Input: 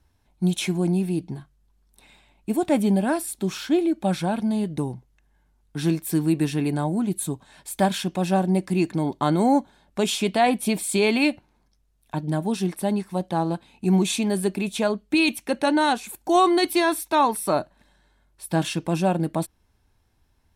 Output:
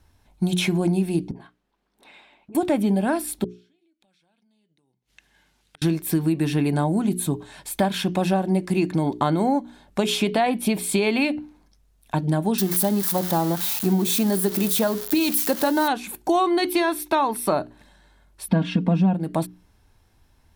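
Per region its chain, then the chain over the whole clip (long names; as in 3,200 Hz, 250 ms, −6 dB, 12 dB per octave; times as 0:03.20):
0:01.31–0:02.55: three-way crossover with the lows and the highs turned down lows −24 dB, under 220 Hz, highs −15 dB, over 4,000 Hz + all-pass dispersion highs, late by 47 ms, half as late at 490 Hz + downward compressor 10 to 1, threshold −47 dBFS
0:03.44–0:05.82: meter weighting curve D + downward compressor 16 to 1, threshold −31 dBFS + gate with flip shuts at −35 dBFS, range −38 dB
0:12.58–0:15.88: spike at every zero crossing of −18.5 dBFS + parametric band 2,500 Hz −8 dB 0.58 octaves
0:18.48–0:19.14: low-pass filter 3,600 Hz + parametric band 210 Hz +14 dB 1.1 octaves + comb filter 4.3 ms, depth 73%
whole clip: mains-hum notches 60/120/180/240/300/360/420 Hz; dynamic equaliser 7,700 Hz, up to −7 dB, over −46 dBFS, Q 0.96; downward compressor, threshold −24 dBFS; level +6.5 dB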